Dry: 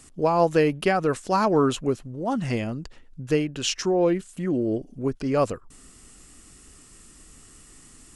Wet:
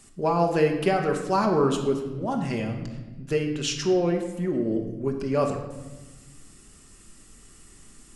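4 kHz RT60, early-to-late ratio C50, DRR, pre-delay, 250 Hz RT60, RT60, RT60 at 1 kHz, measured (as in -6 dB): 0.95 s, 6.5 dB, 2.5 dB, 5 ms, 2.0 s, 1.2 s, 1.1 s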